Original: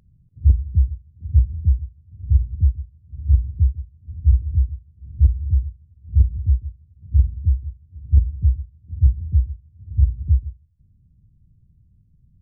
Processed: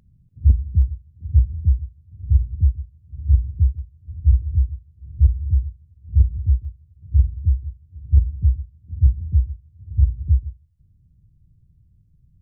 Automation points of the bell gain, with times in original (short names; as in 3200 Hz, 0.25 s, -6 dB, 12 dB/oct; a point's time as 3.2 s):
bell 220 Hz 0.24 oct
+4.5 dB
from 0.82 s -3 dB
from 3.79 s -14 dB
from 5.29 s -5 dB
from 6.65 s -15 dB
from 7.39 s -7.5 dB
from 8.22 s +1.5 dB
from 9.34 s -8.5 dB